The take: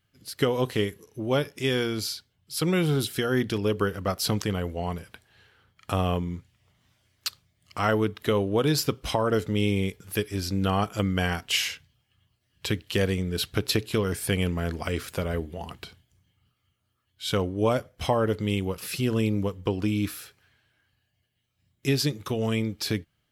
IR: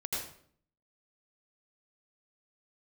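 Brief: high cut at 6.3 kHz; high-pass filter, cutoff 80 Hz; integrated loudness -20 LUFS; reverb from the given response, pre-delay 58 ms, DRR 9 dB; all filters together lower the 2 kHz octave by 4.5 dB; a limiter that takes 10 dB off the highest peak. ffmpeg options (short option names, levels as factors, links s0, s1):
-filter_complex "[0:a]highpass=80,lowpass=6300,equalizer=f=2000:t=o:g=-6,alimiter=limit=0.112:level=0:latency=1,asplit=2[s0][s1];[1:a]atrim=start_sample=2205,adelay=58[s2];[s1][s2]afir=irnorm=-1:irlink=0,volume=0.237[s3];[s0][s3]amix=inputs=2:normalize=0,volume=3.35"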